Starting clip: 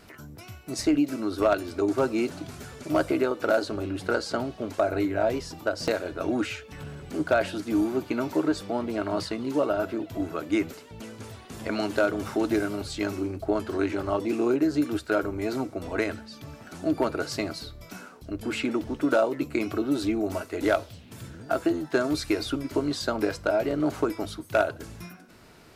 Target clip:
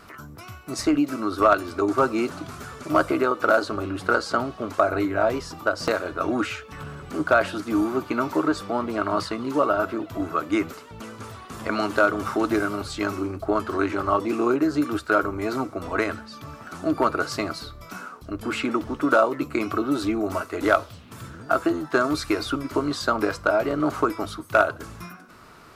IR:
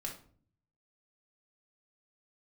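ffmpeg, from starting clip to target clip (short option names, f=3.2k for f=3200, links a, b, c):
-af "equalizer=f=1.2k:w=2.5:g=12,volume=1.5dB"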